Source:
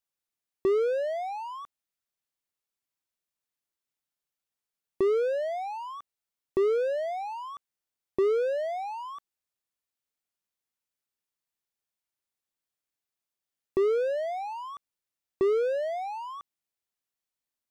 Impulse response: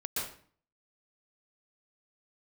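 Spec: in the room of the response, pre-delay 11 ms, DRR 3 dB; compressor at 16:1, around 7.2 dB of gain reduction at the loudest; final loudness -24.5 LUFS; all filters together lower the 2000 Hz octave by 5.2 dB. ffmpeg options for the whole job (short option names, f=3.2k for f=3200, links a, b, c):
-filter_complex "[0:a]equalizer=f=2k:t=o:g=-7,acompressor=threshold=-28dB:ratio=16,asplit=2[a][b];[1:a]atrim=start_sample=2205,adelay=11[c];[b][c]afir=irnorm=-1:irlink=0,volume=-7.5dB[d];[a][d]amix=inputs=2:normalize=0,volume=8dB"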